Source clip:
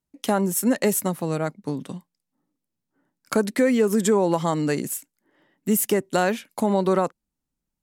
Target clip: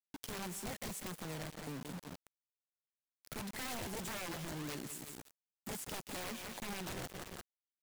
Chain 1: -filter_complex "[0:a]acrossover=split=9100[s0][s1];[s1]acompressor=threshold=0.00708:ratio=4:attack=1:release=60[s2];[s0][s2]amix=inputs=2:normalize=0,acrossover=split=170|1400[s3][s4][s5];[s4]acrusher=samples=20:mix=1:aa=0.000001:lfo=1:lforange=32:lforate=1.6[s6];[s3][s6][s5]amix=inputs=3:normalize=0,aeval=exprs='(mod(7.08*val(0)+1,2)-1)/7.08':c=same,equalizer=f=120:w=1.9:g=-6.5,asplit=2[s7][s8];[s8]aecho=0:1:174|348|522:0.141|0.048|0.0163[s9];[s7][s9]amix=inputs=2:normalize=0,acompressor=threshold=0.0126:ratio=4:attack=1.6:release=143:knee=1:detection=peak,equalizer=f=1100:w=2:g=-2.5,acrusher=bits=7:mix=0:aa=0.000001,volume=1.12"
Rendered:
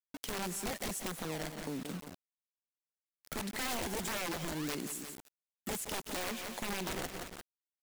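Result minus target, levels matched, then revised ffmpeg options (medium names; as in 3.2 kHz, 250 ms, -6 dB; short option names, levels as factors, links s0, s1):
compression: peak gain reduction -6 dB; 125 Hz band -3.5 dB
-filter_complex "[0:a]acrossover=split=9100[s0][s1];[s1]acompressor=threshold=0.00708:ratio=4:attack=1:release=60[s2];[s0][s2]amix=inputs=2:normalize=0,acrossover=split=170|1400[s3][s4][s5];[s4]acrusher=samples=20:mix=1:aa=0.000001:lfo=1:lforange=32:lforate=1.6[s6];[s3][s6][s5]amix=inputs=3:normalize=0,aeval=exprs='(mod(7.08*val(0)+1,2)-1)/7.08':c=same,equalizer=f=120:w=1.9:g=4,asplit=2[s7][s8];[s8]aecho=0:1:174|348|522:0.141|0.048|0.0163[s9];[s7][s9]amix=inputs=2:normalize=0,acompressor=threshold=0.00531:ratio=4:attack=1.6:release=143:knee=1:detection=peak,equalizer=f=1100:w=2:g=-2.5,acrusher=bits=7:mix=0:aa=0.000001,volume=1.12"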